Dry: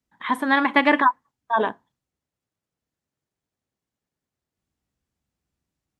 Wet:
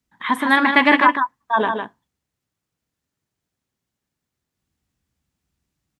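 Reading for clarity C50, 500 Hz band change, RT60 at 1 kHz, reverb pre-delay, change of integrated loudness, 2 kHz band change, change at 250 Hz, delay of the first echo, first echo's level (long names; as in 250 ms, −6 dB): no reverb audible, +1.5 dB, no reverb audible, no reverb audible, +4.0 dB, +5.5 dB, +3.5 dB, 155 ms, −6.0 dB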